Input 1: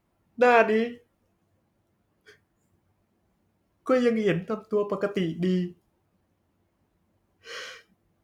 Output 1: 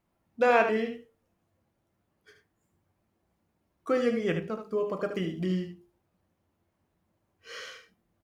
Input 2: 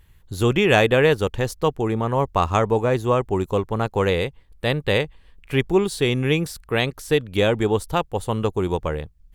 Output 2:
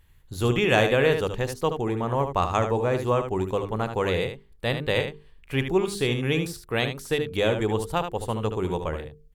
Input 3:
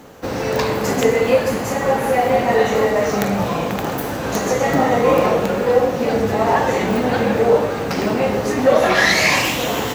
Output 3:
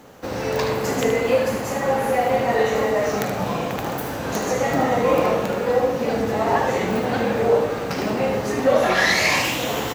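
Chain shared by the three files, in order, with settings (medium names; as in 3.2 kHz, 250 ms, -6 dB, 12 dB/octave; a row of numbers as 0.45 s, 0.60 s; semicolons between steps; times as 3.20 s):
hum notches 50/100/150/200/250/300/350/400/450 Hz; on a send: delay 75 ms -8 dB; on the sum: trim -4 dB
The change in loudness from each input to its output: -3.5 LU, -4.0 LU, -3.5 LU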